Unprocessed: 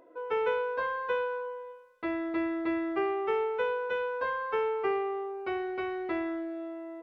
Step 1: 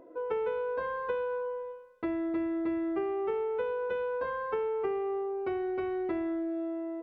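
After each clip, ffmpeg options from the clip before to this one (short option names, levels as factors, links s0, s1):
-af "tiltshelf=f=740:g=6.5,acompressor=threshold=0.0251:ratio=4,volume=1.26"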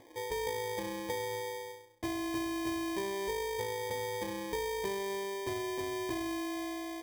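-af "equalizer=f=110:t=o:w=0.67:g=15,acrusher=samples=32:mix=1:aa=0.000001,volume=0.596"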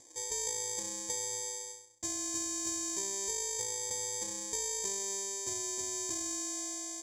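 -af "lowpass=f=7100:t=q:w=9.5,aexciter=amount=2.7:drive=8.5:freq=4000,volume=0.355"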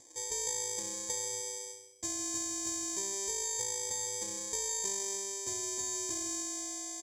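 -af "aecho=1:1:160|320|480|640:0.266|0.106|0.0426|0.017"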